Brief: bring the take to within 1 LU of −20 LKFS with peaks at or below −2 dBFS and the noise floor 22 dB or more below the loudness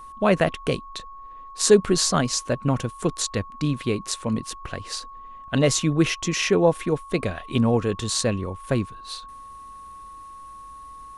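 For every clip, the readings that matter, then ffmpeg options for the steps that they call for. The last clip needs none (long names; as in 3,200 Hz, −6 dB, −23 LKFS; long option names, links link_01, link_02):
interfering tone 1,100 Hz; level of the tone −39 dBFS; integrated loudness −23.5 LKFS; sample peak −2.0 dBFS; target loudness −20.0 LKFS
→ -af "bandreject=frequency=1100:width=30"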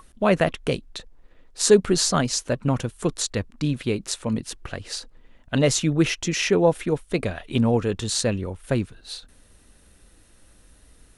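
interfering tone none found; integrated loudness −23.5 LKFS; sample peak −2.5 dBFS; target loudness −20.0 LKFS
→ -af "volume=3.5dB,alimiter=limit=-2dB:level=0:latency=1"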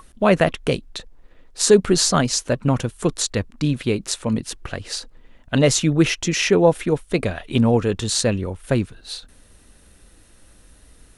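integrated loudness −20.0 LKFS; sample peak −2.0 dBFS; background noise floor −52 dBFS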